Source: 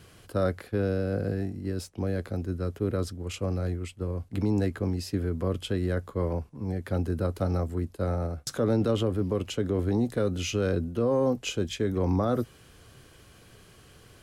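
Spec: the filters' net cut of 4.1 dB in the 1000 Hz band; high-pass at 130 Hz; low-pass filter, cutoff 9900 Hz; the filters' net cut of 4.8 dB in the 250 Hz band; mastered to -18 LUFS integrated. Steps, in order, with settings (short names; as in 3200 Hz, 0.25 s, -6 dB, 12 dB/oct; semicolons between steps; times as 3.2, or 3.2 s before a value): HPF 130 Hz; LPF 9900 Hz; bell 250 Hz -5.5 dB; bell 1000 Hz -5.5 dB; gain +15.5 dB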